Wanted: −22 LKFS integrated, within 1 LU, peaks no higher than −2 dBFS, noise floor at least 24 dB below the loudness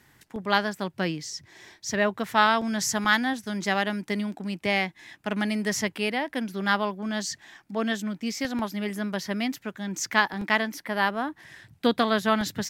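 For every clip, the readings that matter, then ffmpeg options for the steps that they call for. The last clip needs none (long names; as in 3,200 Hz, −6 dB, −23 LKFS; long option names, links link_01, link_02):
integrated loudness −27.0 LKFS; sample peak −4.5 dBFS; target loudness −22.0 LKFS
→ -af "volume=5dB,alimiter=limit=-2dB:level=0:latency=1"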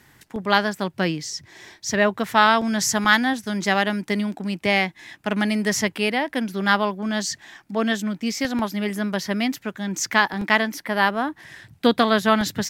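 integrated loudness −22.0 LKFS; sample peak −2.0 dBFS; background noise floor −56 dBFS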